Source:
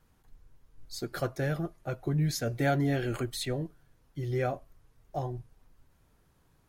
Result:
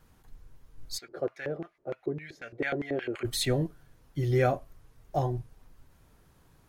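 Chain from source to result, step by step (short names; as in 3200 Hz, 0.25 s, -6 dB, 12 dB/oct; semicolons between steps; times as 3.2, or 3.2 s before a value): 0.97–3.24 LFO band-pass square 2.3 Hz -> 6.7 Hz 430–2200 Hz; gain +5.5 dB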